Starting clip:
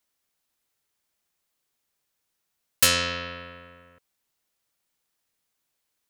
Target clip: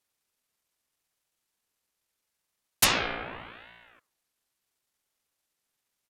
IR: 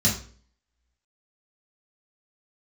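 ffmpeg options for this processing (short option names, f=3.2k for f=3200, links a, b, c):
-af "bandreject=f=96.65:t=h:w=4,bandreject=f=193.3:t=h:w=4,bandreject=f=289.95:t=h:w=4,bandreject=f=386.6:t=h:w=4,bandreject=f=483.25:t=h:w=4,bandreject=f=579.9:t=h:w=4,bandreject=f=676.55:t=h:w=4,bandreject=f=773.2:t=h:w=4,bandreject=f=869.85:t=h:w=4,bandreject=f=966.5:t=h:w=4,bandreject=f=1.06315k:t=h:w=4,bandreject=f=1.1598k:t=h:w=4,bandreject=f=1.25645k:t=h:w=4,bandreject=f=1.3531k:t=h:w=4,bandreject=f=1.44975k:t=h:w=4,asetrate=29433,aresample=44100,atempo=1.49831,aeval=exprs='val(0)*sin(2*PI*1100*n/s+1100*0.7/0.8*sin(2*PI*0.8*n/s))':c=same"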